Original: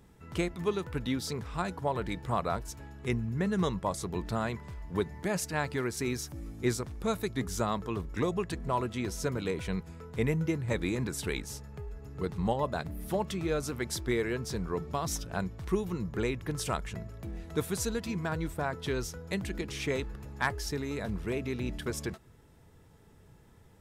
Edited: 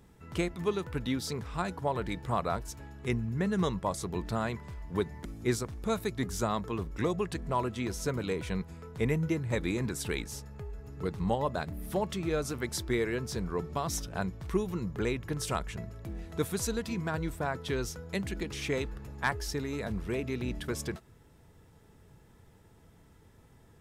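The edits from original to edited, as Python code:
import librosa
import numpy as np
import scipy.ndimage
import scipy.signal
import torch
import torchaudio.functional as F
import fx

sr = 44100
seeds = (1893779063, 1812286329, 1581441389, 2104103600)

y = fx.edit(x, sr, fx.cut(start_s=5.25, length_s=1.18), tone=tone)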